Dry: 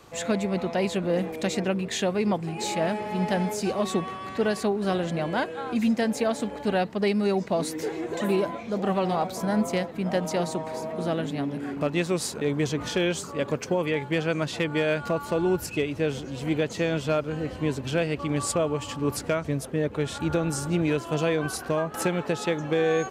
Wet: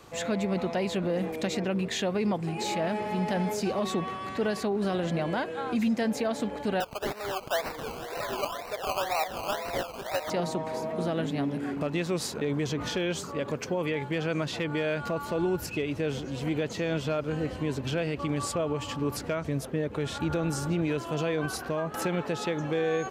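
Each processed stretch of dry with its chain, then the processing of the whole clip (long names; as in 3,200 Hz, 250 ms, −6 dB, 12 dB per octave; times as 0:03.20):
0:06.80–0:10.30: high-pass filter 570 Hz 24 dB per octave + upward compression, threshold −31 dBFS + sample-and-hold swept by an LFO 19×, swing 60% 2 Hz
whole clip: brickwall limiter −20 dBFS; dynamic equaliser 8,800 Hz, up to −6 dB, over −52 dBFS, Q 1.3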